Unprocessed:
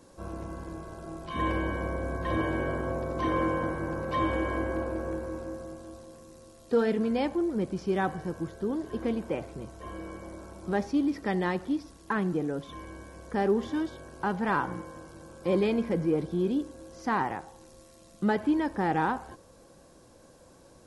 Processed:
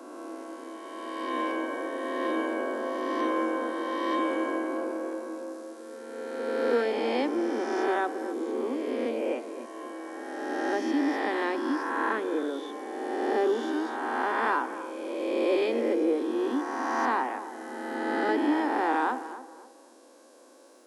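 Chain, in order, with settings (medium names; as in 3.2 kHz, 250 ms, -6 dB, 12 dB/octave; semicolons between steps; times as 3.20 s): reverse spectral sustain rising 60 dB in 2.39 s; steep high-pass 240 Hz 96 dB/octave; tape echo 269 ms, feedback 36%, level -11.5 dB, low-pass 1.5 kHz; trim -2 dB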